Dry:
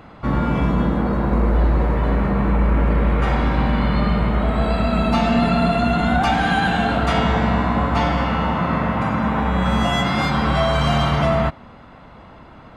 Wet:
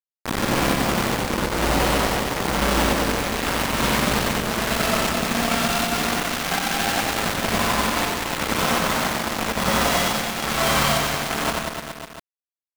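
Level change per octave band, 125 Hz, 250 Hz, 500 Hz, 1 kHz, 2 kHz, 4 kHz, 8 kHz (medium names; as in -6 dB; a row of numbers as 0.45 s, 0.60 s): -9.5 dB, -6.0 dB, -2.0 dB, -2.5 dB, +1.5 dB, +5.0 dB, no reading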